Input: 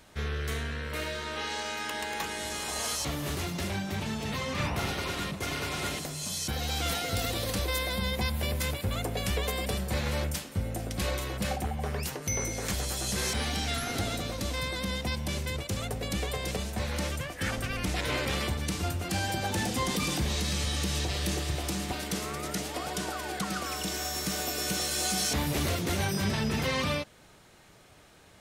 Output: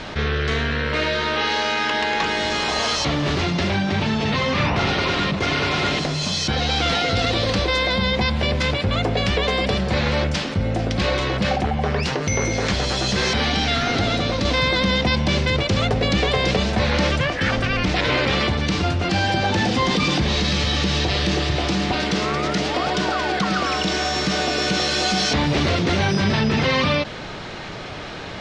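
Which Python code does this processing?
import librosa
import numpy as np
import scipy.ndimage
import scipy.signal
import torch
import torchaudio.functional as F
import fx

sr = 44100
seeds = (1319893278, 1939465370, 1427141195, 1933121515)

y = fx.edit(x, sr, fx.clip_gain(start_s=14.45, length_s=2.85, db=4.0), tone=tone)
y = scipy.signal.sosfilt(scipy.signal.butter(4, 5000.0, 'lowpass', fs=sr, output='sos'), y)
y = fx.peak_eq(y, sr, hz=64.0, db=-6.0, octaves=0.73)
y = fx.env_flatten(y, sr, amount_pct=50)
y = y * 10.0 ** (8.5 / 20.0)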